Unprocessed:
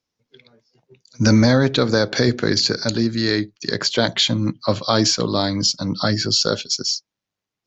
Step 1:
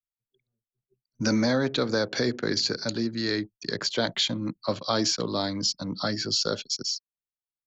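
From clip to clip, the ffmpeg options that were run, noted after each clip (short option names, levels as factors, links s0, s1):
-filter_complex "[0:a]anlmdn=10,acrossover=split=170|800[s0][s1][s2];[s0]acompressor=threshold=0.0251:ratio=6[s3];[s3][s1][s2]amix=inputs=3:normalize=0,volume=0.422"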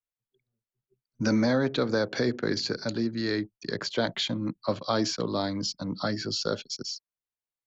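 -af "highshelf=f=3700:g=-9"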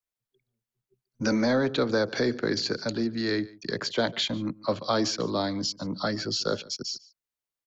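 -filter_complex "[0:a]acrossover=split=220|470|1500[s0][s1][s2][s3];[s0]asoftclip=type=tanh:threshold=0.02[s4];[s4][s1][s2][s3]amix=inputs=4:normalize=0,aecho=1:1:145:0.0794,volume=1.19"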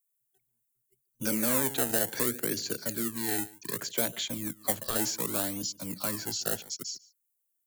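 -filter_complex "[0:a]acrossover=split=190|990[s0][s1][s2];[s1]acrusher=samples=26:mix=1:aa=0.000001:lfo=1:lforange=26:lforate=0.66[s3];[s0][s3][s2]amix=inputs=3:normalize=0,aexciter=amount=4.7:drive=9:freq=7000,volume=0.473"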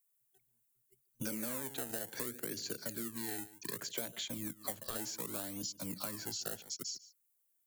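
-af "acompressor=threshold=0.01:ratio=4,volume=1.19"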